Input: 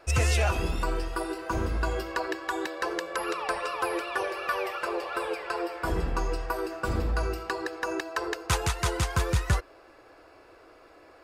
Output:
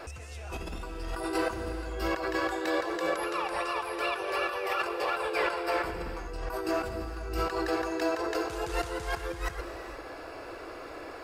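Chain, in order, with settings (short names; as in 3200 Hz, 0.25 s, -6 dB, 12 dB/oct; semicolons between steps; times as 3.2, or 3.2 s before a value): negative-ratio compressor -38 dBFS, ratio -1; non-linear reverb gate 0.49 s flat, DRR 7.5 dB; gain +3.5 dB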